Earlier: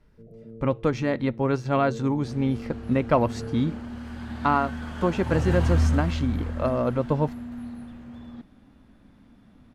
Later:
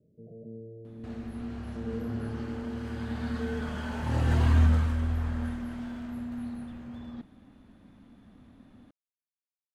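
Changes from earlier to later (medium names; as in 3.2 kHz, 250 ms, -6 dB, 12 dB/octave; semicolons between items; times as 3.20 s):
speech: muted; second sound: entry -1.20 s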